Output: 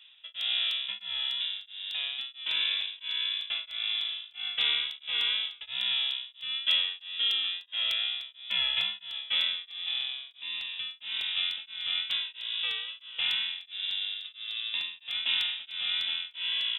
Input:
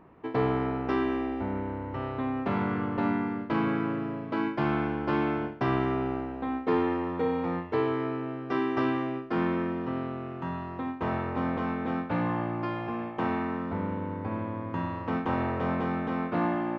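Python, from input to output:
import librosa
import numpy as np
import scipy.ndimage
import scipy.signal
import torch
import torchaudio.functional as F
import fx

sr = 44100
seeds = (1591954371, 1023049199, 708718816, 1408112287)

y = fx.rev_spring(x, sr, rt60_s=3.1, pass_ms=(45,), chirp_ms=25, drr_db=19.5)
y = fx.wow_flutter(y, sr, seeds[0], rate_hz=2.1, depth_cents=41.0)
y = fx.freq_invert(y, sr, carrier_hz=3700)
y = fx.buffer_crackle(y, sr, first_s=0.41, period_s=0.3, block=64, kind='repeat')
y = y * np.abs(np.cos(np.pi * 1.5 * np.arange(len(y)) / sr))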